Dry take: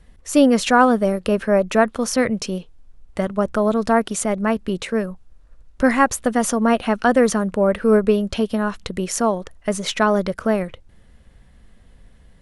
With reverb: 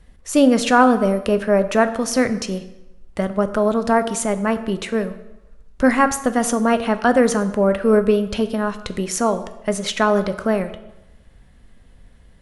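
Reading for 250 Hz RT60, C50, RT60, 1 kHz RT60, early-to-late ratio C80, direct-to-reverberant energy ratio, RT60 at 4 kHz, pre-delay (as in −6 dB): 0.90 s, 13.0 dB, 0.95 s, 1.0 s, 15.0 dB, 10.0 dB, 0.75 s, 8 ms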